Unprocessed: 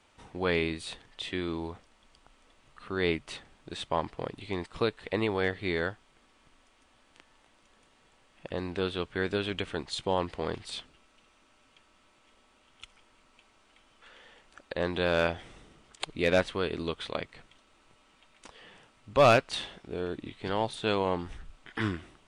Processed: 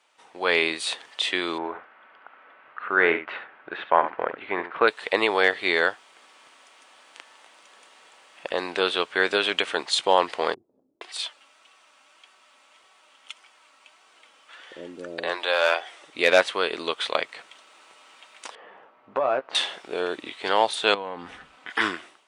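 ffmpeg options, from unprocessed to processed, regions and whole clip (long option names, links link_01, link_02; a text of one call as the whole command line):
ffmpeg -i in.wav -filter_complex "[0:a]asettb=1/sr,asplit=3[link_01][link_02][link_03];[link_01]atrim=end=1.584[link_04];[link_02]atrim=start=1.58:end=4.88,asetpts=PTS-STARTPTS,afade=type=in:duration=0.004:curve=qsin,afade=type=out:start_time=3.296:duration=0.004:curve=qsin,lowpass=frequency=2300:width=0.5412,lowpass=frequency=2300:width=1.3066,equalizer=frequency=1500:width=4.1:gain=8,aecho=1:1:70:0.282,atrim=end_sample=145530[link_05];[link_03]atrim=start=4.876[link_06];[link_04][link_05]acrossfade=duration=0.004:curve1=hsin:curve2=qsin[link_07];[link_07][link_06]acrossfade=duration=0.004:curve1=qsin:curve2=hsin,asettb=1/sr,asplit=3[link_08][link_09][link_10];[link_08]atrim=end=10.544[link_11];[link_09]atrim=start=10.54:end=16.13,asetpts=PTS-STARTPTS,afade=type=in:duration=0.004:curve=qsin,afade=type=out:start_time=5.586:duration=0.004:curve=qsin,acrossover=split=380[link_12][link_13];[link_13]adelay=470[link_14];[link_12][link_14]amix=inputs=2:normalize=0,atrim=end_sample=246519,flanger=delay=2.6:depth=1.1:regen=61:speed=1.7:shape=sinusoidal[link_15];[link_10]atrim=start=16.126[link_16];[link_11][link_15]acrossfade=duration=0.004:curve1=hsin:curve2=qsin[link_17];[link_17][link_16]acrossfade=duration=0.004:curve1=qsin:curve2=hsin,asettb=1/sr,asplit=3[link_18][link_19][link_20];[link_18]atrim=end=18.554[link_21];[link_19]atrim=start=18.55:end=19.55,asetpts=PTS-STARTPTS,afade=type=in:duration=0.004:curve=qsin,afade=type=out:start_time=0.996:duration=0.004:curve=qsin,lowpass=1100,acompressor=threshold=-29dB:ratio=16:attack=3.2:release=140:knee=1:detection=peak,asplit=2[link_22][link_23];[link_23]adelay=15,volume=-8.5dB[link_24];[link_22][link_24]amix=inputs=2:normalize=0,atrim=end_sample=44100[link_25];[link_20]atrim=start=19.546[link_26];[link_21][link_25]acrossfade=duration=0.004:curve1=hsin:curve2=qsin[link_27];[link_27][link_26]acrossfade=duration=0.004:curve1=qsin:curve2=hsin,asettb=1/sr,asplit=3[link_28][link_29][link_30];[link_28]atrim=end=20.944[link_31];[link_29]atrim=start=20.94:end=21.7,asetpts=PTS-STARTPTS,afade=type=in:duration=0.004:curve=qsin,afade=type=out:start_time=0.756:duration=0.004:curve=qsin,acompressor=threshold=-38dB:ratio=6:attack=3.2:release=140:knee=1:detection=peak,bass=frequency=250:gain=11,treble=frequency=4000:gain=-9,aecho=1:1:4:0.33,atrim=end_sample=33516[link_32];[link_30]atrim=start=21.696[link_33];[link_31][link_32]acrossfade=duration=0.004:curve1=hsin:curve2=qsin[link_34];[link_34][link_33]acrossfade=duration=0.004:curve1=qsin:curve2=hsin,highpass=570,dynaudnorm=framelen=130:gausssize=7:maxgain=12.5dB" out.wav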